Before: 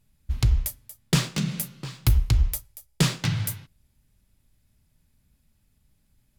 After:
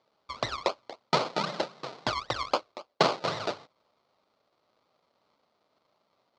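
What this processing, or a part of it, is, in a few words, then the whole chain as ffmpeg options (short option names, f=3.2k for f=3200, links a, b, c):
circuit-bent sampling toy: -af "acrusher=samples=32:mix=1:aa=0.000001:lfo=1:lforange=19.2:lforate=3.8,highpass=500,equalizer=f=600:t=q:w=4:g=4,equalizer=f=1.2k:t=q:w=4:g=4,equalizer=f=1.7k:t=q:w=4:g=-8,equalizer=f=2.7k:t=q:w=4:g=-4,equalizer=f=4.3k:t=q:w=4:g=6,lowpass=f=5.3k:w=0.5412,lowpass=f=5.3k:w=1.3066,volume=5dB"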